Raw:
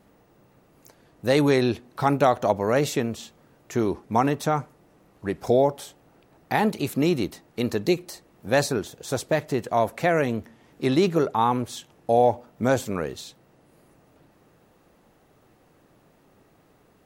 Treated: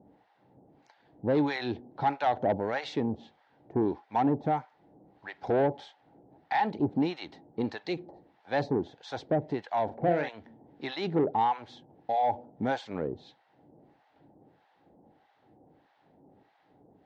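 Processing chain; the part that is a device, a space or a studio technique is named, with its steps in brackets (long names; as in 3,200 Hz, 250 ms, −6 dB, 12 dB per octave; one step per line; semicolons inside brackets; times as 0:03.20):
guitar amplifier with harmonic tremolo (two-band tremolo in antiphase 1.6 Hz, depth 100%, crossover 830 Hz; soft clipping −22 dBFS, distortion −11 dB; loudspeaker in its box 77–3,900 Hz, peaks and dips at 290 Hz +5 dB, 810 Hz +9 dB, 1,200 Hz −9 dB, 2,600 Hz −6 dB)
0:09.85–0:10.29: double-tracking delay 40 ms −7 dB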